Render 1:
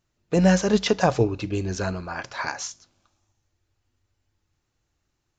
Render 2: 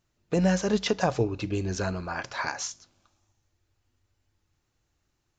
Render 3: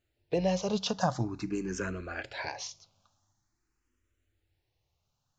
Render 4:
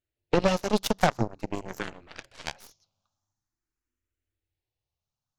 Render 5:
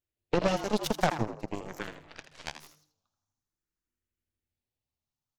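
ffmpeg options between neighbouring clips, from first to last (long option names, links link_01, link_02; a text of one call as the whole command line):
ffmpeg -i in.wav -af "acompressor=threshold=-29dB:ratio=1.5" out.wav
ffmpeg -i in.wav -filter_complex "[0:a]asplit=2[link_01][link_02];[link_02]afreqshift=0.46[link_03];[link_01][link_03]amix=inputs=2:normalize=1,volume=-1dB" out.wav
ffmpeg -i in.wav -af "aeval=exprs='0.158*(cos(1*acos(clip(val(0)/0.158,-1,1)))-cos(1*PI/2))+0.0708*(cos(2*acos(clip(val(0)/0.158,-1,1)))-cos(2*PI/2))+0.002*(cos(3*acos(clip(val(0)/0.158,-1,1)))-cos(3*PI/2))+0.0251*(cos(7*acos(clip(val(0)/0.158,-1,1)))-cos(7*PI/2))':channel_layout=same,volume=6dB" out.wav
ffmpeg -i in.wav -filter_complex "[0:a]asplit=4[link_01][link_02][link_03][link_04];[link_02]adelay=81,afreqshift=150,volume=-10.5dB[link_05];[link_03]adelay=162,afreqshift=300,volume=-20.4dB[link_06];[link_04]adelay=243,afreqshift=450,volume=-30.3dB[link_07];[link_01][link_05][link_06][link_07]amix=inputs=4:normalize=0,volume=-4dB" out.wav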